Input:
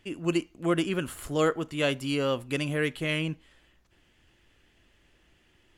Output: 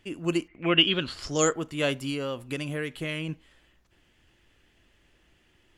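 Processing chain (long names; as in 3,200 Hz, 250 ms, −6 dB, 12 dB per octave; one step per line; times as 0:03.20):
0:00.47–0:01.52: low-pass with resonance 1,900 Hz → 7,500 Hz, resonance Q 12
0:02.09–0:03.29: downward compressor, threshold −28 dBFS, peak gain reduction 6 dB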